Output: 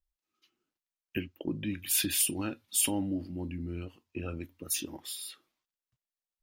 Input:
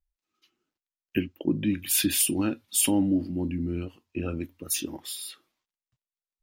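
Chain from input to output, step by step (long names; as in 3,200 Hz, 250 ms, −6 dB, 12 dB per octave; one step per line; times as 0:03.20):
dynamic equaliser 250 Hz, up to −6 dB, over −35 dBFS, Q 0.79
level −3.5 dB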